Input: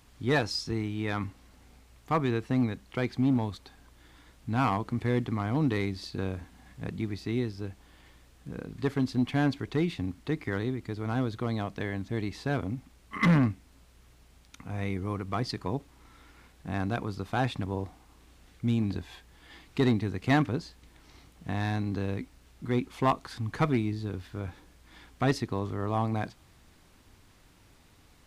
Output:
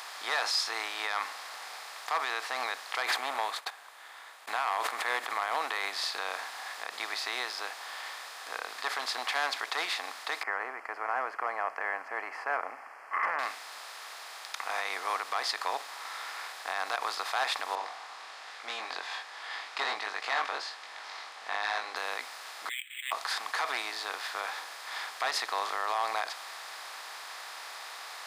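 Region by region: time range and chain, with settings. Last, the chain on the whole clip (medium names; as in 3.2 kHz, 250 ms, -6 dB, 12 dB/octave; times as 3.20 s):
3.02–5.93 s: gate -48 dBFS, range -53 dB + peaking EQ 5.1 kHz -10.5 dB 0.66 oct + swell ahead of each attack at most 23 dB/s
10.43–13.39 s: Butterworth band-stop 3.7 kHz, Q 0.87 + distance through air 460 m
17.75–21.96 s: chorus 1.3 Hz, delay 19.5 ms, depth 2.6 ms + distance through air 100 m
22.69–23.12 s: steep high-pass 2.1 kHz 72 dB/octave + careless resampling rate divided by 8×, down filtered, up hold
whole clip: spectral levelling over time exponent 0.6; high-pass 740 Hz 24 dB/octave; peak limiter -23 dBFS; trim +4 dB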